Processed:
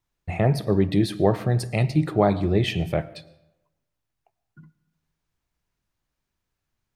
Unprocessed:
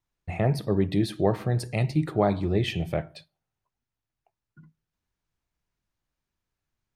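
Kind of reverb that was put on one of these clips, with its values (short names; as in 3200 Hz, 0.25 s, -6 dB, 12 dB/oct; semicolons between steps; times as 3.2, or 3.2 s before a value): digital reverb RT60 0.94 s, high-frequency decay 0.65×, pre-delay 70 ms, DRR 19.5 dB; gain +3.5 dB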